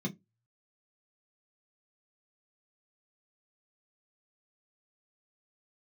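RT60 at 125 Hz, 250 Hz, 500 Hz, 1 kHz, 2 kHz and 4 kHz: 0.25 s, 0.20 s, 0.20 s, 0.15 s, 0.15 s, 0.10 s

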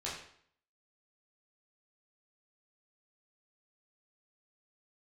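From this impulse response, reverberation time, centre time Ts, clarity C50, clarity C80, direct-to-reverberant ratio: 0.60 s, 44 ms, 4.0 dB, 7.0 dB, -7.5 dB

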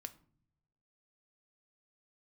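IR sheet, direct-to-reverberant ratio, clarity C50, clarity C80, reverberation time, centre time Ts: 8.5 dB, 17.0 dB, 21.5 dB, no single decay rate, 4 ms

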